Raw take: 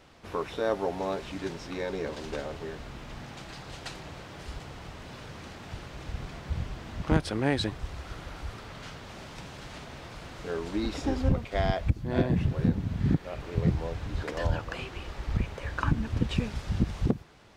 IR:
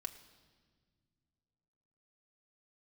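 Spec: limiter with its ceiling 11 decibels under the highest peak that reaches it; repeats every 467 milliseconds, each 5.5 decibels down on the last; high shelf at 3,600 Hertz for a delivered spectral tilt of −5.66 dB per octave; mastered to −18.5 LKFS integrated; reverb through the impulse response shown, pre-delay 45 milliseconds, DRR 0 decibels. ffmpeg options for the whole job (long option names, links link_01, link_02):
-filter_complex "[0:a]highshelf=frequency=3600:gain=-4,alimiter=limit=-22dB:level=0:latency=1,aecho=1:1:467|934|1401|1868|2335|2802|3269:0.531|0.281|0.149|0.079|0.0419|0.0222|0.0118,asplit=2[link_01][link_02];[1:a]atrim=start_sample=2205,adelay=45[link_03];[link_02][link_03]afir=irnorm=-1:irlink=0,volume=2.5dB[link_04];[link_01][link_04]amix=inputs=2:normalize=0,volume=13.5dB"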